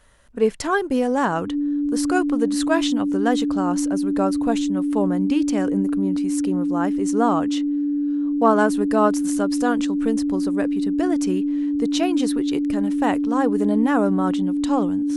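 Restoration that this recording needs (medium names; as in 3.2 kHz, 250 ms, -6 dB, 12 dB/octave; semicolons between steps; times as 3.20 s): band-stop 290 Hz, Q 30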